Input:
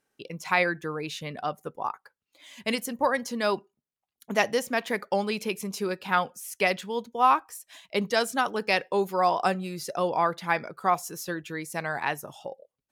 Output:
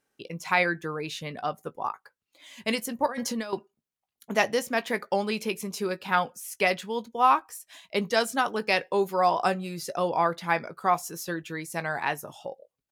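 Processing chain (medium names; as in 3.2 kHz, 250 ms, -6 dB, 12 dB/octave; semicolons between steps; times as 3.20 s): 3.06–3.53 s: compressor with a negative ratio -33 dBFS, ratio -1; doubling 18 ms -13.5 dB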